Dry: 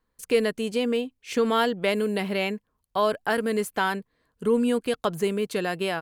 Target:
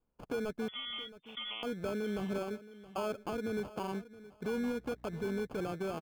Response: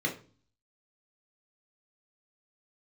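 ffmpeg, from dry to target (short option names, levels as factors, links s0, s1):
-filter_complex "[0:a]asettb=1/sr,asplit=3[s0][s1][s2];[s0]atrim=end=2.384[s3];[s1]atrim=start=2.38:end=2.98,asetpts=PTS-STARTPTS,afade=t=in:d=0.004:c=qsin,afade=t=out:st=0.596:d=0.004:c=qsin,highpass=250[s4];[s2]atrim=start=2.976[s5];[s3][s4]acrossfade=d=0.004:c1=hsin:c2=qsin[s6];[s6][s5]acrossfade=d=0.004:c1=qsin:c2=hsin,acrossover=split=750[s7][s8];[s7]alimiter=limit=0.0668:level=0:latency=1:release=69[s9];[s8]acompressor=threshold=0.0112:ratio=4[s10];[s9][s10]amix=inputs=2:normalize=0,asettb=1/sr,asplit=3[s11][s12][s13];[s11]atrim=end=4.504[s14];[s12]atrim=start=4.5:end=5.48,asetpts=PTS-STARTPTS,afade=t=in:d=0.004:c=qsin,afade=t=out:st=0.976:d=0.004:c=qsin,aeval=exprs='val(0)+0.00224*(sin(2*PI*60*n/s)+sin(2*PI*2*60*n/s)/2+sin(2*PI*3*60*n/s)/3+sin(2*PI*4*60*n/s)/4+sin(2*PI*5*60*n/s)/5)':c=same[s15];[s13]atrim=start=5.476[s16];[s14][s15]acrossfade=d=0.004:c1=hsin:c2=qsin[s17];[s17][s16]acrossfade=d=0.004:c1=qsin:c2=hsin,acrusher=samples=23:mix=1:aa=0.000001,asettb=1/sr,asplit=3[s18][s19][s20];[s18]atrim=end=0.684[s21];[s19]atrim=start=0.68:end=1.63,asetpts=PTS-STARTPTS,afade=t=in:d=0.004:c=qsin,afade=t=out:st=0.946:d=0.004:c=qsin,lowpass=f=3100:t=q:w=0.5098,lowpass=f=3100:t=q:w=0.6013,lowpass=f=3100:t=q:w=0.9,lowpass=f=3100:t=q:w=2.563,afreqshift=-3600[s22];[s20]atrim=start=1.626[s23];[s21][s22]acrossfade=d=0.004:c1=hsin:c2=qsin[s24];[s24][s23]acrossfade=d=0.004:c1=qsin:c2=hsin,highshelf=f=2400:g=-11.5,asplit=2[s25][s26];[s26]aecho=0:1:671|1342:0.141|0.0297[s27];[s25][s27]amix=inputs=2:normalize=0,volume=0.531"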